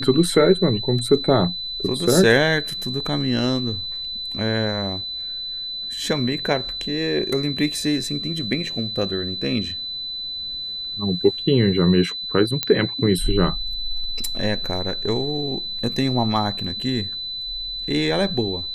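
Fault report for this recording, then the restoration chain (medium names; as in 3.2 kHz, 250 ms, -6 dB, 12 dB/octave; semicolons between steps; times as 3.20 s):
whine 4 kHz -27 dBFS
12.63 s: pop -6 dBFS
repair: de-click; band-stop 4 kHz, Q 30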